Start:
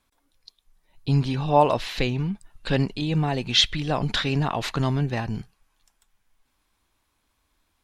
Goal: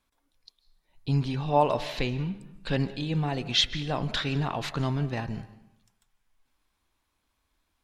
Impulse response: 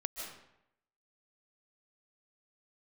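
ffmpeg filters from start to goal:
-filter_complex "[0:a]bandreject=f=101.9:t=h:w=4,bandreject=f=203.8:t=h:w=4,bandreject=f=305.7:t=h:w=4,bandreject=f=407.6:t=h:w=4,bandreject=f=509.5:t=h:w=4,bandreject=f=611.4:t=h:w=4,bandreject=f=713.3:t=h:w=4,bandreject=f=815.2:t=h:w=4,bandreject=f=917.1:t=h:w=4,bandreject=f=1019:t=h:w=4,bandreject=f=1120.9:t=h:w=4,bandreject=f=1222.8:t=h:w=4,bandreject=f=1324.7:t=h:w=4,bandreject=f=1426.6:t=h:w=4,bandreject=f=1528.5:t=h:w=4,bandreject=f=1630.4:t=h:w=4,bandreject=f=1732.3:t=h:w=4,bandreject=f=1834.2:t=h:w=4,bandreject=f=1936.1:t=h:w=4,bandreject=f=2038:t=h:w=4,bandreject=f=2139.9:t=h:w=4,asplit=2[s0][s1];[1:a]atrim=start_sample=2205,lowpass=7400[s2];[s1][s2]afir=irnorm=-1:irlink=0,volume=0.251[s3];[s0][s3]amix=inputs=2:normalize=0,volume=0.501"

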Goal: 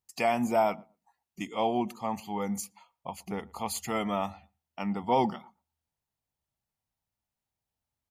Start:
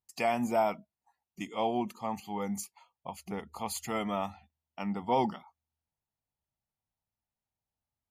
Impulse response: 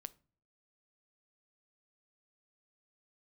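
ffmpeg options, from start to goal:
-filter_complex "[0:a]asplit=2[s0][s1];[s1]adelay=117,lowpass=f=1100:p=1,volume=0.0708,asplit=2[s2][s3];[s3]adelay=117,lowpass=f=1100:p=1,volume=0.17[s4];[s0][s2][s4]amix=inputs=3:normalize=0,volume=1.33"

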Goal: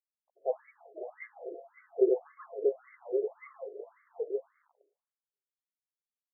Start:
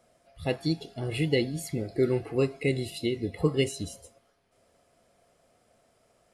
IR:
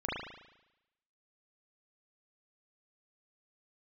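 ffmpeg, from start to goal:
-filter_complex "[0:a]asettb=1/sr,asplit=3[s0][s1][s2];[s0]atrim=end=2.844[s3];[s1]atrim=start=2.84:end=3.33,asetpts=PTS-STARTPTS,afade=t=in:d=0.004:c=qsin,afade=t=out:st=0.486:d=0.004:c=qsin,aeval=exprs='val(0)+0.5*0.0126*sgn(val(0))':c=same[s4];[s2]atrim=start=3.326[s5];[s3][s4]acrossfade=d=0.004:c1=hsin:c2=qsin[s6];[s6][s5]acrossfade=d=0.004:c1=qsin:c2=hsin,lowshelf=f=200:g=7.5,asplit=2[s7][s8];[s8]adelay=758,volume=0.447,highshelf=f=4000:g=-17.1[s9];[s7][s9]amix=inputs=2:normalize=0,aeval=exprs='val(0)*gte(abs(val(0)),0.00355)':c=same,equalizer=f=1500:w=0.54:g=-9,asplit=2[s10][s11];[1:a]atrim=start_sample=2205,adelay=75[s12];[s11][s12]afir=irnorm=-1:irlink=0,volume=0.0501[s13];[s10][s13]amix=inputs=2:normalize=0,afftfilt=real='re*between(b*sr/1024,480*pow(1600/480,0.5+0.5*sin(2*PI*1.8*pts/sr))/1.41,480*pow(1600/480,0.5+0.5*sin(2*PI*1.8*pts/sr))*1.41)':imag='im*between(b*sr/1024,480*pow(1600/480,0.5+0.5*sin(2*PI*1.8*pts/sr))/1.41,480*pow(1600/480,0.5+0.5*sin(2*PI*1.8*pts/sr))*1.41)':win_size=1024:overlap=0.75,volume=1.68"

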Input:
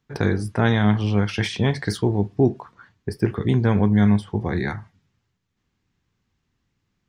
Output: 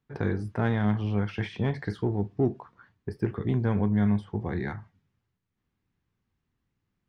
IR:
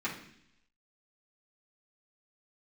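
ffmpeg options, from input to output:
-filter_complex "[0:a]acrossover=split=3200[s0][s1];[s1]acompressor=threshold=0.00794:ratio=4:attack=1:release=60[s2];[s0][s2]amix=inputs=2:normalize=0,highshelf=f=3700:g=-10.5,asplit=2[s3][s4];[s4]asoftclip=type=tanh:threshold=0.0841,volume=0.299[s5];[s3][s5]amix=inputs=2:normalize=0,volume=0.398"

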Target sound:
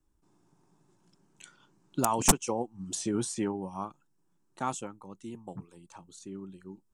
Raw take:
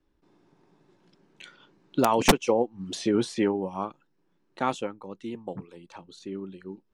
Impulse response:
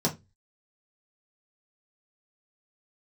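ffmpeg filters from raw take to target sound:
-af "equalizer=f=250:t=o:w=1:g=-4,equalizer=f=500:t=o:w=1:g=-10,equalizer=f=2000:t=o:w=1:g=-9,equalizer=f=4000:t=o:w=1:g=-9,equalizer=f=8000:t=o:w=1:g=11"

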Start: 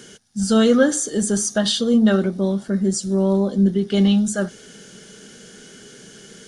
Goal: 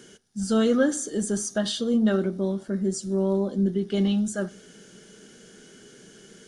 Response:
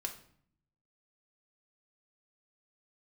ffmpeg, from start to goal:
-filter_complex "[0:a]equalizer=f=340:t=o:w=0.77:g=3,asplit=2[s0][s1];[1:a]atrim=start_sample=2205,lowpass=f=4600:w=0.5412,lowpass=f=4600:w=1.3066[s2];[s1][s2]afir=irnorm=-1:irlink=0,volume=0.224[s3];[s0][s3]amix=inputs=2:normalize=0,volume=0.398"

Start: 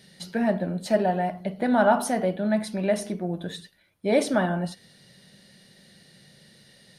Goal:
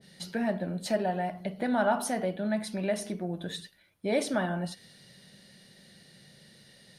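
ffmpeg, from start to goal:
-filter_complex "[0:a]asplit=2[s0][s1];[s1]acompressor=threshold=0.0251:ratio=6,volume=1.19[s2];[s0][s2]amix=inputs=2:normalize=0,adynamicequalizer=threshold=0.0141:dfrequency=1500:dqfactor=0.7:tfrequency=1500:tqfactor=0.7:attack=5:release=100:ratio=0.375:range=1.5:mode=boostabove:tftype=highshelf,volume=0.376"

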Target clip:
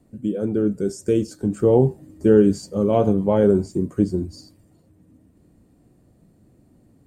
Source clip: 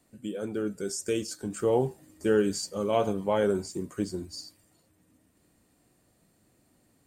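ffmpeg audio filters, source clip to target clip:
-af "tiltshelf=f=690:g=9.5,volume=1.78"

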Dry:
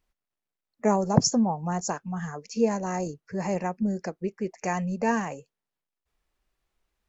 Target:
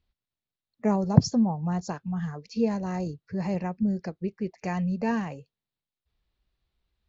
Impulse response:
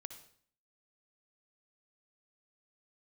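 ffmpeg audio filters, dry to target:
-af "lowpass=f=4000:t=q:w=3,equalizer=f=83:t=o:w=2.8:g=14.5,volume=0.473"

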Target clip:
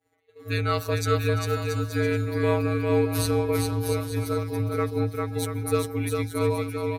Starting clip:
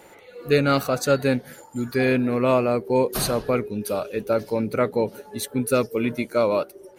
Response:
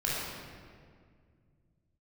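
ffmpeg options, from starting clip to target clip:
-filter_complex "[0:a]afftfilt=real='hypot(re,im)*cos(PI*b)':imag='0':win_size=1024:overlap=0.75,afreqshift=-65,equalizer=f=120:w=3.7:g=5.5,asplit=2[s0][s1];[s1]aecho=0:1:400|680|876|1013|1109:0.631|0.398|0.251|0.158|0.1[s2];[s0][s2]amix=inputs=2:normalize=0,agate=range=0.0224:threshold=0.0126:ratio=3:detection=peak,volume=0.841"

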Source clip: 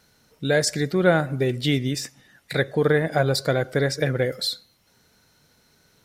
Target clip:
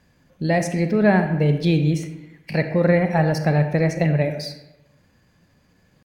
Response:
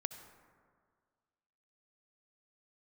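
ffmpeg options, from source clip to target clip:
-filter_complex "[0:a]asetrate=50951,aresample=44100,atempo=0.865537,bass=f=250:g=8,treble=f=4000:g=-10[s0];[1:a]atrim=start_sample=2205,asetrate=83790,aresample=44100[s1];[s0][s1]afir=irnorm=-1:irlink=0,volume=2.11"

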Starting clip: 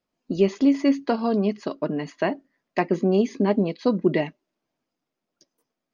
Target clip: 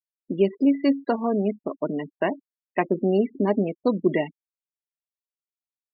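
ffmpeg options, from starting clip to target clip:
-af "afftfilt=real='re*gte(hypot(re,im),0.0398)':imag='im*gte(hypot(re,im),0.0398)':win_size=1024:overlap=0.75,equalizer=f=89:t=o:w=1.2:g=-10,bandreject=f=1300:w=25"

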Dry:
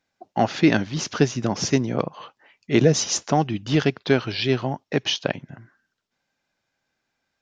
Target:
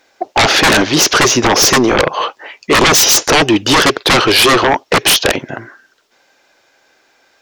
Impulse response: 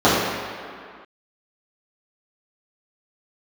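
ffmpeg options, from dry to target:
-af "acontrast=81,lowshelf=f=260:t=q:w=1.5:g=-12,aeval=exprs='0.944*sin(PI/2*7.08*val(0)/0.944)':c=same,volume=0.562"

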